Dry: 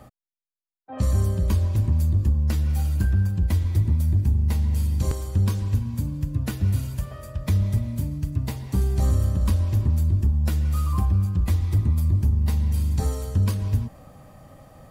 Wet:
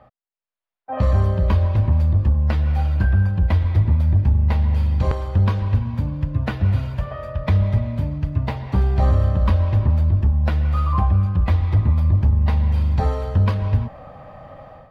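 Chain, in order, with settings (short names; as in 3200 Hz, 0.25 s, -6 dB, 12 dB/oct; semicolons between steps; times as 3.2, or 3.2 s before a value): resonant low shelf 460 Hz -7 dB, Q 1.5; AGC gain up to 11.5 dB; air absorption 360 m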